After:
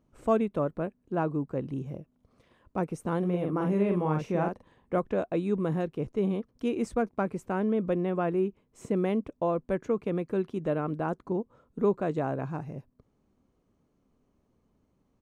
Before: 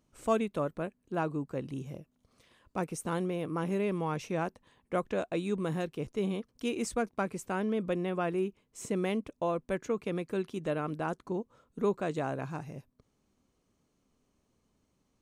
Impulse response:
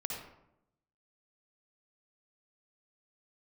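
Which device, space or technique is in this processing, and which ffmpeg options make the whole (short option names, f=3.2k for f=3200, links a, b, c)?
through cloth: -filter_complex "[0:a]asplit=3[a][b][c];[a]afade=t=out:st=3.22:d=0.02[d];[b]asplit=2[e][f];[f]adelay=45,volume=-4dB[g];[e][g]amix=inputs=2:normalize=0,afade=t=in:st=3.22:d=0.02,afade=t=out:st=4.97:d=0.02[h];[c]afade=t=in:st=4.97:d=0.02[i];[d][h][i]amix=inputs=3:normalize=0,highshelf=f=2.2k:g=-15,volume=4.5dB"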